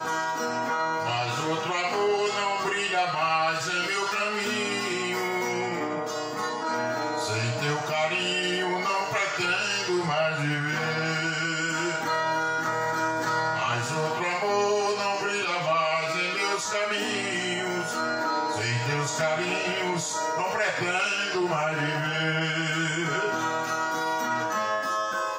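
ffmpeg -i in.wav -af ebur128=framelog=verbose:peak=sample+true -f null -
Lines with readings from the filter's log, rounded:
Integrated loudness:
  I:         -26.3 LUFS
  Threshold: -36.3 LUFS
Loudness range:
  LRA:         1.7 LU
  Threshold: -46.3 LUFS
  LRA low:   -27.4 LUFS
  LRA high:  -25.6 LUFS
Sample peak:
  Peak:      -13.0 dBFS
True peak:
  Peak:      -12.9 dBFS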